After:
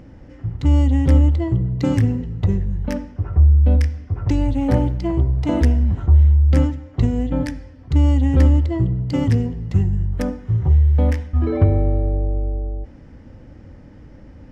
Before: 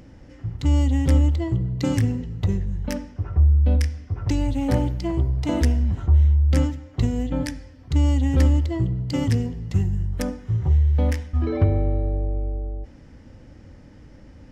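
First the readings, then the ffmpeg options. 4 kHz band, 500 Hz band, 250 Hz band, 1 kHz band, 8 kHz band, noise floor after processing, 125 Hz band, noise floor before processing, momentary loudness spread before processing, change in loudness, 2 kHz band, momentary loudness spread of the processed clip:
-2.0 dB, +3.5 dB, +4.0 dB, +3.0 dB, n/a, -43 dBFS, +4.0 dB, -47 dBFS, 10 LU, +4.0 dB, +1.0 dB, 10 LU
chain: -af "highshelf=f=3.2k:g=-10.5,volume=4dB"

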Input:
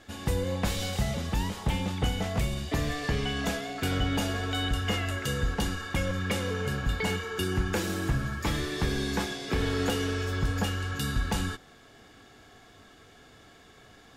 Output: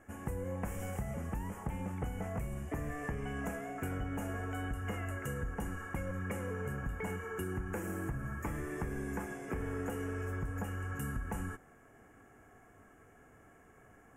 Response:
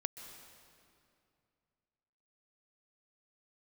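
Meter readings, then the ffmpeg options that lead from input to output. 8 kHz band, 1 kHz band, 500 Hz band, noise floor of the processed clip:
-13.0 dB, -8.0 dB, -8.0 dB, -61 dBFS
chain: -af "asuperstop=centerf=4100:order=4:qfactor=0.69,acompressor=threshold=-29dB:ratio=6,volume=-5dB"

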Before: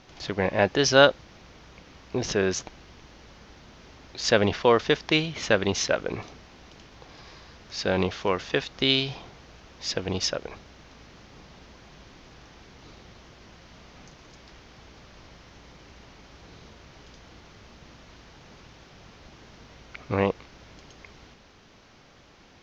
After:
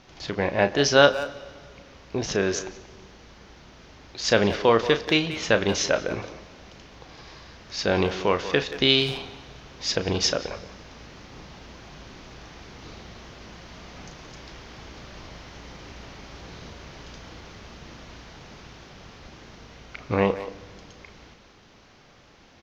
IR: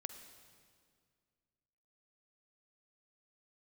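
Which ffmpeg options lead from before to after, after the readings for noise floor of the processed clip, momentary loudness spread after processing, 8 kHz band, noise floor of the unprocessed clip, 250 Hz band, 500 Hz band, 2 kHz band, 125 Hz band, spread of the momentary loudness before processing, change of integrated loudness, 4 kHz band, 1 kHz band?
-53 dBFS, 23 LU, n/a, -54 dBFS, +1.5 dB, +1.5 dB, +1.5 dB, +1.0 dB, 14 LU, +1.5 dB, +2.0 dB, +1.5 dB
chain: -filter_complex "[0:a]dynaudnorm=f=960:g=11:m=11.5dB,asplit=2[a][b];[b]adelay=180,highpass=300,lowpass=3.4k,asoftclip=type=hard:threshold=-12dB,volume=-12dB[c];[a][c]amix=inputs=2:normalize=0,asplit=2[d][e];[1:a]atrim=start_sample=2205,adelay=35[f];[e][f]afir=irnorm=-1:irlink=0,volume=-7dB[g];[d][g]amix=inputs=2:normalize=0"

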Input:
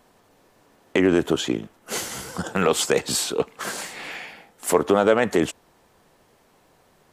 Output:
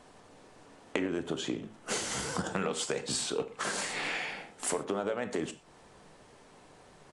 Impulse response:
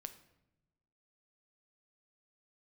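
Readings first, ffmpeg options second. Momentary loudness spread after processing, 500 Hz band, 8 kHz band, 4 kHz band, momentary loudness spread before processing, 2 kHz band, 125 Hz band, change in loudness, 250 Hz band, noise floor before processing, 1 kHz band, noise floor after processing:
5 LU, -13.0 dB, -7.0 dB, -7.5 dB, 14 LU, -7.5 dB, -10.0 dB, -10.5 dB, -12.0 dB, -60 dBFS, -10.5 dB, -57 dBFS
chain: -filter_complex "[0:a]acompressor=threshold=-32dB:ratio=8[a];[1:a]atrim=start_sample=2205,afade=t=out:st=0.18:d=0.01,atrim=end_sample=8379[b];[a][b]afir=irnorm=-1:irlink=0,aresample=22050,aresample=44100,volume=7dB"

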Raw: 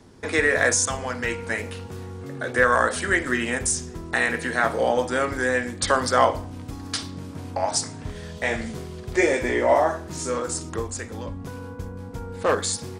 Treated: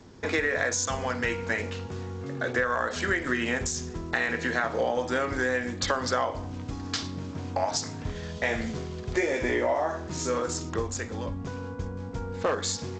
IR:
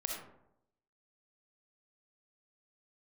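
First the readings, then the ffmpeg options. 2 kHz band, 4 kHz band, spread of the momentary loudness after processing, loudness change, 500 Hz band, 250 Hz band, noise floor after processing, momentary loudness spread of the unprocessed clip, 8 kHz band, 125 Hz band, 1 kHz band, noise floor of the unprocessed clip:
-5.0 dB, -3.0 dB, 10 LU, -5.5 dB, -5.0 dB, -3.0 dB, -38 dBFS, 17 LU, -6.5 dB, -1.5 dB, -6.5 dB, -38 dBFS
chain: -af "acompressor=threshold=-22dB:ratio=12" -ar 16000 -c:a g722

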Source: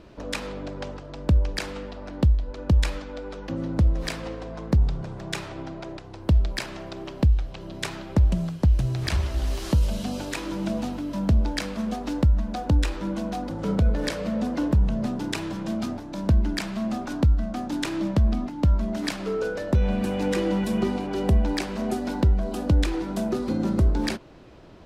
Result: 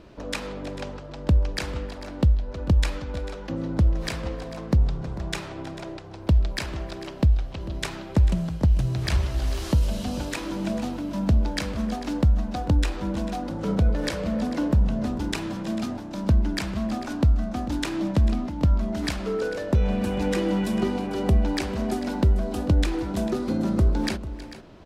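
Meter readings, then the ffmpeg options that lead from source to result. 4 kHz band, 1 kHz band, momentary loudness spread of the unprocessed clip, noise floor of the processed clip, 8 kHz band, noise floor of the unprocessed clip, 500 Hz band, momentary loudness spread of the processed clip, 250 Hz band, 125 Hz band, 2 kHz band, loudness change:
0.0 dB, 0.0 dB, 11 LU, -38 dBFS, 0.0 dB, -40 dBFS, 0.0 dB, 10 LU, 0.0 dB, 0.0 dB, 0.0 dB, 0.0 dB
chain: -af "aecho=1:1:319|445:0.133|0.178"

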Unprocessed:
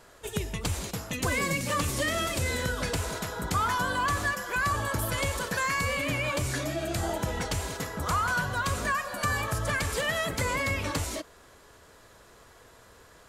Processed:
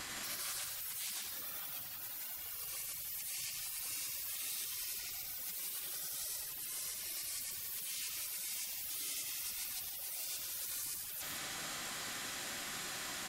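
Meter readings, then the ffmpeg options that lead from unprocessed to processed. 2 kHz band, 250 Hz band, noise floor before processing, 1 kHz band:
-18.0 dB, -24.0 dB, -55 dBFS, -22.5 dB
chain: -filter_complex "[0:a]afftfilt=real='re*lt(hypot(re,im),0.0631)':imag='im*lt(hypot(re,im),0.0631)':win_size=1024:overlap=0.75,aecho=1:1:4.4:0.32,aeval=exprs='val(0)+0.00178*sin(2*PI*890*n/s)':c=same,afftfilt=real='re*lt(hypot(re,im),0.00355)':imag='im*lt(hypot(re,im),0.00355)':win_size=1024:overlap=0.75,asplit=2[a][b];[b]aecho=0:1:96.21|166.2:0.501|0.562[c];[a][c]amix=inputs=2:normalize=0,volume=15dB"

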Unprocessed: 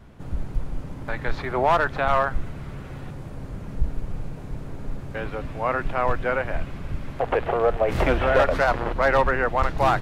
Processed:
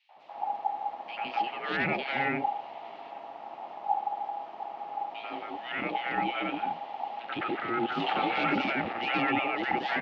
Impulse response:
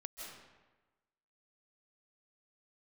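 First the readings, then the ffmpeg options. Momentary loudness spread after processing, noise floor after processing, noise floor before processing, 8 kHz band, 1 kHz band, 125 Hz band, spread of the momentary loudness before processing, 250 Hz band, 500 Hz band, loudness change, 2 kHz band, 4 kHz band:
13 LU, -45 dBFS, -37 dBFS, n/a, -4.5 dB, -16.0 dB, 17 LU, -2.5 dB, -13.5 dB, -7.0 dB, -4.5 dB, +1.5 dB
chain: -filter_complex "[0:a]aeval=exprs='val(0)*sin(2*PI*820*n/s)':c=same,highpass=290,equalizer=f=440:t=q:w=4:g=-4,equalizer=f=1k:t=q:w=4:g=-9,equalizer=f=1.5k:t=q:w=4:g=-10,equalizer=f=2.8k:t=q:w=4:g=5,lowpass=f=4.2k:w=0.5412,lowpass=f=4.2k:w=1.3066,acrossover=split=570|2500[a][b][c];[b]adelay=90[d];[a]adelay=160[e];[e][d][c]amix=inputs=3:normalize=0"

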